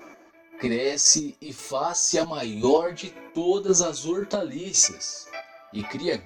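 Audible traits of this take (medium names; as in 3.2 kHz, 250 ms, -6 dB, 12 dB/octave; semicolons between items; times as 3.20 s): chopped level 1.9 Hz, depth 60%, duty 25%; a shimmering, thickened sound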